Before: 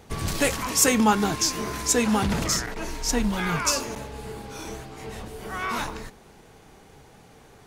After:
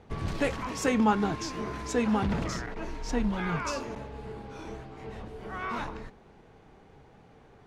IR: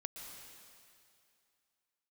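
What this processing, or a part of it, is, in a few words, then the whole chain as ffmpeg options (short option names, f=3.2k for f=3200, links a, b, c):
phone in a pocket: -af "lowpass=3.2k,aemphasis=mode=production:type=50fm,highshelf=f=2k:g=-9,volume=-3dB"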